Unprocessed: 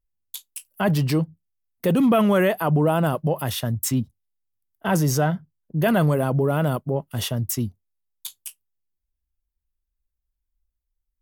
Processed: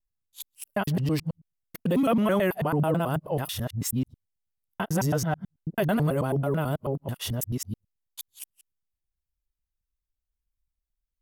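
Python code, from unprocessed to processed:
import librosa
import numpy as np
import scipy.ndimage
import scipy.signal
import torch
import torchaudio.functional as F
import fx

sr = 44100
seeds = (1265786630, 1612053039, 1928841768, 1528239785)

y = fx.local_reverse(x, sr, ms=109.0)
y = y * librosa.db_to_amplitude(-5.0)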